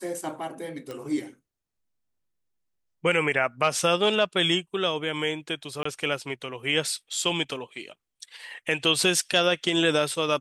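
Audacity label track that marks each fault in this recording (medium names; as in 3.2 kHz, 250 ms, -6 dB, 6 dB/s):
0.910000	0.910000	pop -23 dBFS
5.830000	5.850000	dropout 24 ms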